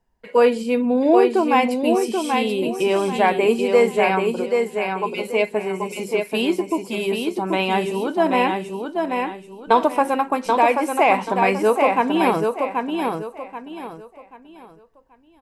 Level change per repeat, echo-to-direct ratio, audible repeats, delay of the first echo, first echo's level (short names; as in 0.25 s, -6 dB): -10.0 dB, -4.0 dB, 3, 0.783 s, -4.5 dB